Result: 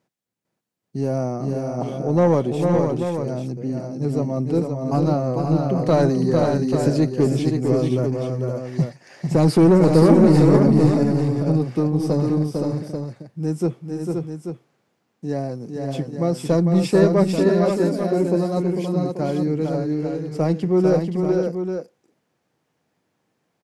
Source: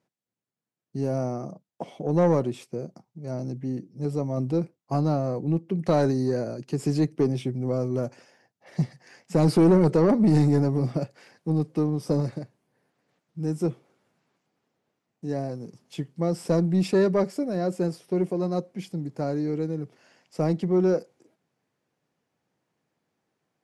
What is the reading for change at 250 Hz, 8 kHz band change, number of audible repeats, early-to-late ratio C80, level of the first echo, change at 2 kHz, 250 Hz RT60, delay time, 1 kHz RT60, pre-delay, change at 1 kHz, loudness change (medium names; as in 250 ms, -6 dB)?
+6.5 dB, +6.5 dB, 3, no reverb, -5.0 dB, +6.5 dB, no reverb, 450 ms, no reverb, no reverb, +6.5 dB, +5.5 dB